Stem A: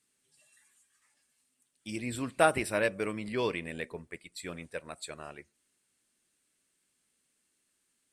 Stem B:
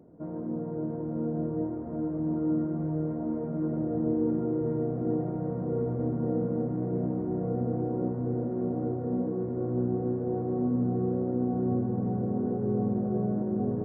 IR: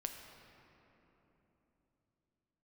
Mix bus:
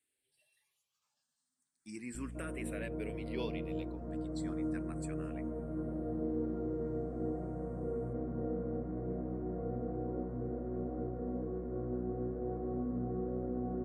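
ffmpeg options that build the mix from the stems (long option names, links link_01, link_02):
-filter_complex "[0:a]alimiter=limit=-22.5dB:level=0:latency=1:release=394,asplit=2[link_01][link_02];[link_02]afreqshift=0.35[link_03];[link_01][link_03]amix=inputs=2:normalize=1,volume=-6.5dB[link_04];[1:a]lowshelf=frequency=330:gain=-9.5,bandreject=frequency=890:width=5.4,aeval=exprs='val(0)+0.01*(sin(2*PI*60*n/s)+sin(2*PI*2*60*n/s)/2+sin(2*PI*3*60*n/s)/3+sin(2*PI*4*60*n/s)/4+sin(2*PI*5*60*n/s)/5)':channel_layout=same,adelay=2150,volume=-4dB[link_05];[link_04][link_05]amix=inputs=2:normalize=0"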